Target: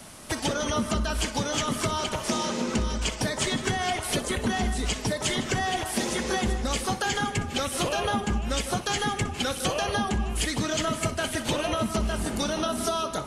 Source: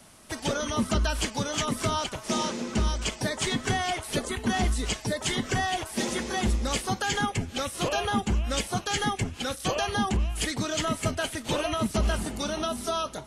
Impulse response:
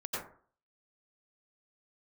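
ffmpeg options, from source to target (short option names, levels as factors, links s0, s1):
-filter_complex "[0:a]acompressor=threshold=0.0251:ratio=6,asplit=2[s0][s1];[1:a]atrim=start_sample=2205,adelay=62[s2];[s1][s2]afir=irnorm=-1:irlink=0,volume=0.251[s3];[s0][s3]amix=inputs=2:normalize=0,volume=2.37"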